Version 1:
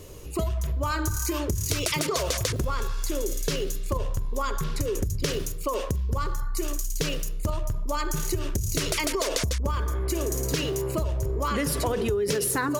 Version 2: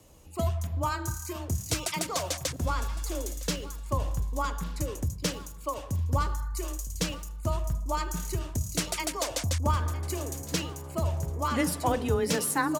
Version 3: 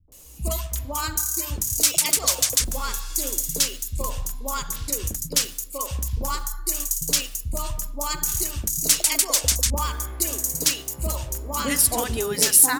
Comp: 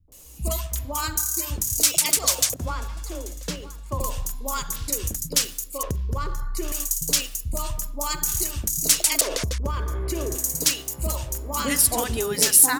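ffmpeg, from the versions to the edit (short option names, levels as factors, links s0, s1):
-filter_complex "[0:a]asplit=2[s0][s1];[2:a]asplit=4[s2][s3][s4][s5];[s2]atrim=end=2.542[s6];[1:a]atrim=start=2.538:end=4.002[s7];[s3]atrim=start=3.998:end=5.832[s8];[s0]atrim=start=5.828:end=6.722[s9];[s4]atrim=start=6.718:end=9.212[s10];[s1]atrim=start=9.208:end=10.352[s11];[s5]atrim=start=10.348[s12];[s6][s7]acrossfade=d=0.004:c1=hsin:c2=hsin[s13];[s13][s8]acrossfade=d=0.004:c1=hsin:c2=hsin[s14];[s14][s9]acrossfade=d=0.004:c1=hsin:c2=hsin[s15];[s15][s10]acrossfade=d=0.004:c1=hsin:c2=hsin[s16];[s16][s11]acrossfade=d=0.004:c1=hsin:c2=hsin[s17];[s17][s12]acrossfade=d=0.004:c1=hsin:c2=hsin"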